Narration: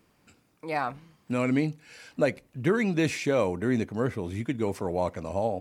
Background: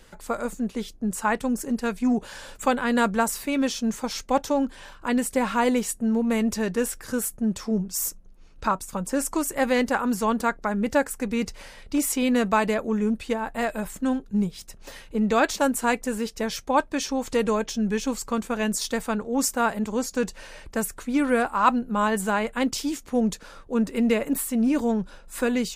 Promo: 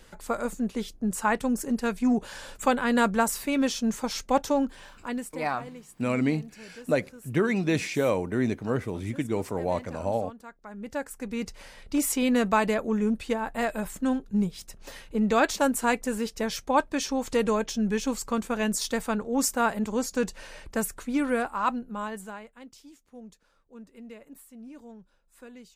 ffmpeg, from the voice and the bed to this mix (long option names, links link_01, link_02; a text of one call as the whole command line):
ffmpeg -i stem1.wav -i stem2.wav -filter_complex "[0:a]adelay=4700,volume=0dB[link_01];[1:a]volume=19dB,afade=type=out:start_time=4.54:duration=0.93:silence=0.0944061,afade=type=in:start_time=10.58:duration=1.44:silence=0.1,afade=type=out:start_time=20.8:duration=1.72:silence=0.0841395[link_02];[link_01][link_02]amix=inputs=2:normalize=0" out.wav